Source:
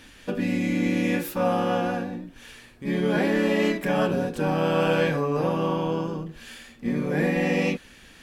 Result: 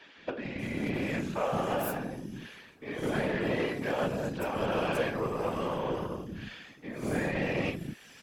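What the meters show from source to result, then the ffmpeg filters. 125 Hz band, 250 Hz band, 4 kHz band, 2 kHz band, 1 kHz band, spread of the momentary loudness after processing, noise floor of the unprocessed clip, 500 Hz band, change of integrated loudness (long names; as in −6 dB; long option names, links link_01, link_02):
−8.0 dB, −9.5 dB, −6.5 dB, −6.0 dB, −6.0 dB, 12 LU, −50 dBFS, −7.0 dB, −7.5 dB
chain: -filter_complex "[0:a]highpass=140,acompressor=threshold=-33dB:ratio=2,acrossover=split=280|4700[link_01][link_02][link_03];[link_01]adelay=170[link_04];[link_03]adelay=590[link_05];[link_04][link_02][link_05]amix=inputs=3:normalize=0,aeval=exprs='0.119*(cos(1*acos(clip(val(0)/0.119,-1,1)))-cos(1*PI/2))+0.00668*(cos(7*acos(clip(val(0)/0.119,-1,1)))-cos(7*PI/2))':channel_layout=same,afftfilt=real='hypot(re,im)*cos(2*PI*random(0))':imag='hypot(re,im)*sin(2*PI*random(1))':win_size=512:overlap=0.75,volume=8dB"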